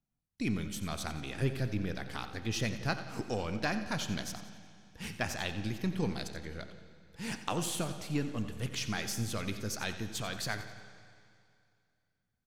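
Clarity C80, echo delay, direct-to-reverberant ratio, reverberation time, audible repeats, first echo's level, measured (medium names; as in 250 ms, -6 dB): 9.0 dB, 89 ms, 8.0 dB, 2.4 s, 2, -13.5 dB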